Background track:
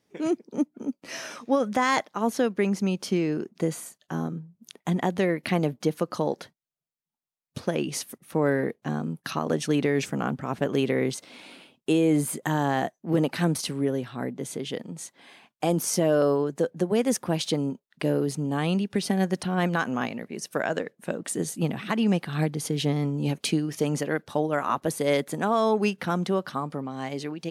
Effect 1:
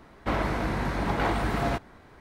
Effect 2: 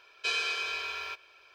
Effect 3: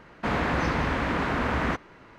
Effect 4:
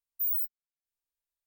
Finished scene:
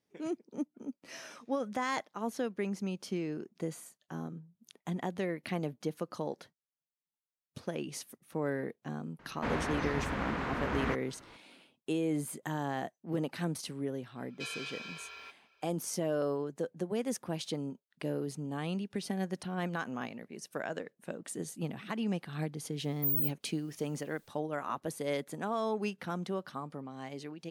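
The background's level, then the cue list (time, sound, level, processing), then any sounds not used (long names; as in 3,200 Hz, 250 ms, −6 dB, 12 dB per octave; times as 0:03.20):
background track −10.5 dB
0:09.19: mix in 3 −8.5 dB + speech leveller within 4 dB
0:14.16: mix in 2 −11 dB
0:22.83: mix in 4 −1.5 dB + upward compression, threshold −46 dBFS
not used: 1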